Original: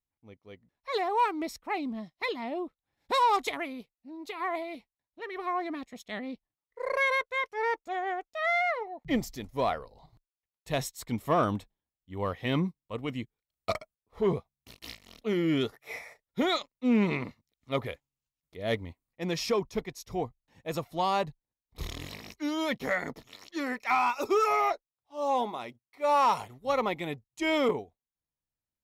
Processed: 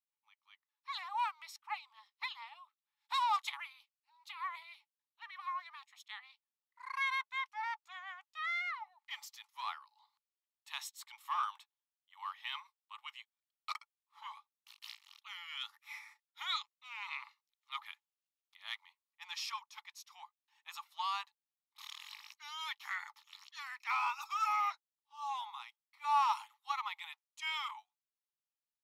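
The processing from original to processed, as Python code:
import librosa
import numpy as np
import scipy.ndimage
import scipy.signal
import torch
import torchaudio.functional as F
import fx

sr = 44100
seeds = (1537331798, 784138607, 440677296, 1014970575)

y = scipy.signal.sosfilt(scipy.signal.cheby1(6, 6, 830.0, 'highpass', fs=sr, output='sos'), x)
y = y * librosa.db_to_amplitude(-3.5)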